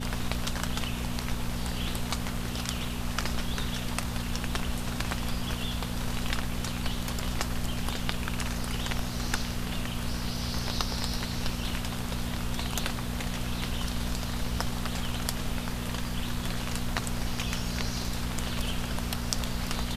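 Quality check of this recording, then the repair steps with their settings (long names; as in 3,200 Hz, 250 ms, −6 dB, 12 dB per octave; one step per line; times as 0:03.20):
mains hum 60 Hz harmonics 4 −35 dBFS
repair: hum removal 60 Hz, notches 4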